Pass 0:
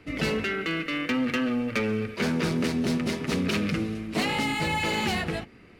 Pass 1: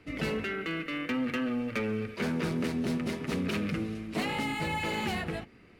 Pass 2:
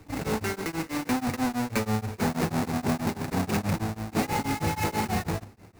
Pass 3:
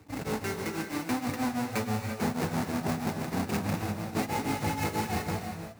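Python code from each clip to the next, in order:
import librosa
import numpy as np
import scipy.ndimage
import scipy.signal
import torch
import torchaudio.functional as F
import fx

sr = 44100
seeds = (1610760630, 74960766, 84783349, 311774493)

y1 = fx.dynamic_eq(x, sr, hz=5300.0, q=0.83, threshold_db=-44.0, ratio=4.0, max_db=-5)
y1 = F.gain(torch.from_numpy(y1), -4.5).numpy()
y2 = fx.halfwave_hold(y1, sr)
y2 = fx.graphic_eq_31(y2, sr, hz=(100, 800, 3150), db=(10, 6, -7))
y2 = y2 * np.abs(np.cos(np.pi * 6.2 * np.arange(len(y2)) / sr))
y2 = F.gain(torch.from_numpy(y2), 1.0).numpy()
y3 = scipy.signal.sosfilt(scipy.signal.butter(2, 61.0, 'highpass', fs=sr, output='sos'), y2)
y3 = fx.rev_gated(y3, sr, seeds[0], gate_ms=370, shape='rising', drr_db=4.5)
y3 = F.gain(torch.from_numpy(y3), -4.0).numpy()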